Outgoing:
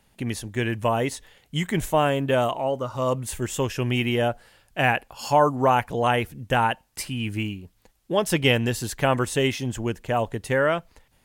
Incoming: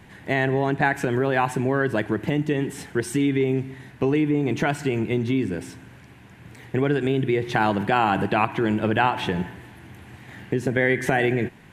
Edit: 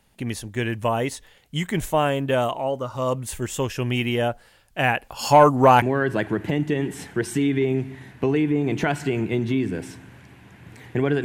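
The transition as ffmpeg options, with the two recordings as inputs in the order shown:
ffmpeg -i cue0.wav -i cue1.wav -filter_complex "[0:a]asettb=1/sr,asplit=3[link_01][link_02][link_03];[link_01]atrim=end=5.034[link_04];[link_02]atrim=start=5.03:end=5.82,asetpts=PTS-STARTPTS,afade=type=in:duration=0.004:curve=qsin,afade=type=out:start_time=0.786:duration=0.004:curve=qsin,acontrast=54[link_05];[link_03]atrim=start=5.816[link_06];[link_04][link_05]acrossfade=duration=0.004:curve1=hsin:curve2=qsin[link_07];[link_07][link_06]acrossfade=duration=0.004:curve1=qsin:curve2=hsin,apad=whole_dur=11.24,atrim=end=11.24,atrim=end=5.822[link_08];[1:a]atrim=start=1.608:end=7.03[link_09];[link_08][link_09]acrossfade=duration=0.004:curve1=hsin:curve2=hsin" out.wav

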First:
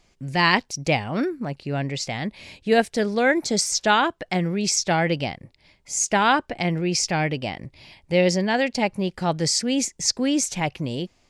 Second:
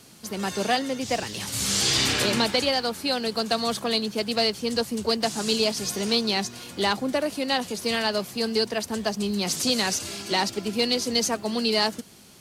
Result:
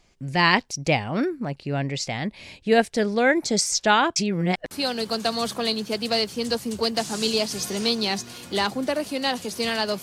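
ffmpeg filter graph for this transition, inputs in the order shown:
ffmpeg -i cue0.wav -i cue1.wav -filter_complex "[0:a]apad=whole_dur=10.02,atrim=end=10.02,asplit=2[link_01][link_02];[link_01]atrim=end=4.162[link_03];[link_02]atrim=start=4.158:end=4.712,asetpts=PTS-STARTPTS,areverse[link_04];[1:a]atrim=start=2.968:end=8.28[link_05];[link_03][link_04]acrossfade=duration=0.004:curve1=hsin:curve2=hsin[link_06];[link_06][link_05]acrossfade=duration=0.004:curve1=hsin:curve2=hsin" out.wav

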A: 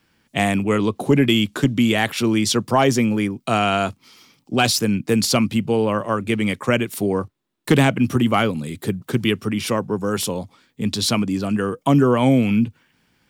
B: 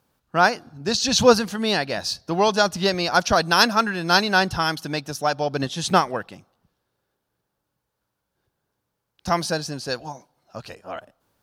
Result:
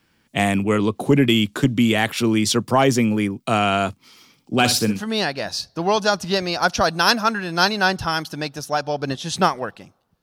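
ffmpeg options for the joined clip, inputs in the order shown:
ffmpeg -i cue0.wav -i cue1.wav -filter_complex "[0:a]asettb=1/sr,asplit=3[link_01][link_02][link_03];[link_01]atrim=end=4.334[link_04];[link_02]atrim=start=4.33:end=5.02,asetpts=PTS-STARTPTS,afade=type=in:duration=0.004:curve=qsin,afade=type=out:start_time=0.686:duration=0.004:curve=qsin,aecho=1:1:61|122|183:0.299|0.0657|0.0144,atrim=end_sample=30429[link_05];[link_03]atrim=start=5.016[link_06];[link_04][link_05]acrossfade=duration=0.004:curve1=hsin:curve2=qsin[link_07];[link_07][link_06]acrossfade=duration=0.004:curve1=qsin:curve2=hsin,apad=whole_dur=10.22,atrim=end=10.22,atrim=end=5.02,asetpts=PTS-STARTPTS[link_08];[1:a]atrim=start=1.4:end=6.74,asetpts=PTS-STARTPTS[link_09];[link_08][link_09]acrossfade=duration=0.14:curve1=tri:curve2=tri" out.wav

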